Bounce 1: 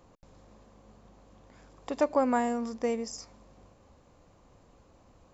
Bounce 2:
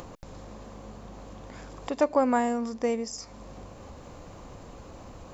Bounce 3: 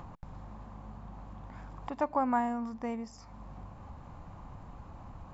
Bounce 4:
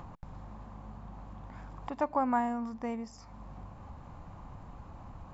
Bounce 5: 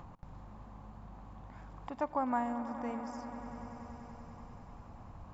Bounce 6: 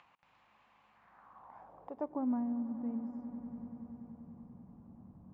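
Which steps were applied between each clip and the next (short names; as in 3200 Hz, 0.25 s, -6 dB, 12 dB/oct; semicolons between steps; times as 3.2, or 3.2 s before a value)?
upward compressor, threshold -35 dBFS; gain +2.5 dB
EQ curve 160 Hz 0 dB, 490 Hz -14 dB, 850 Hz 0 dB, 6200 Hz -18 dB
nothing audible
swelling echo 96 ms, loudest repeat 5, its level -16 dB; gain -4 dB
band-pass sweep 2600 Hz -> 210 Hz, 0.87–2.42; gain +4.5 dB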